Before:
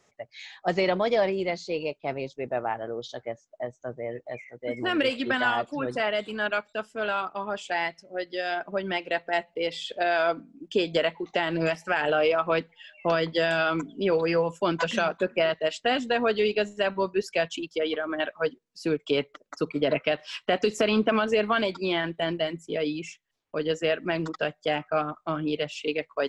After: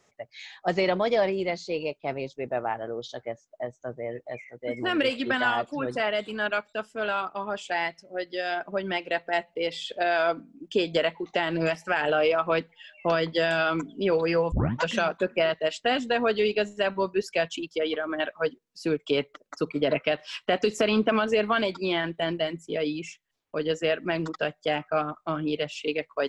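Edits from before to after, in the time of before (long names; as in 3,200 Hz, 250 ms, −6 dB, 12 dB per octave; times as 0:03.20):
0:14.52: tape start 0.30 s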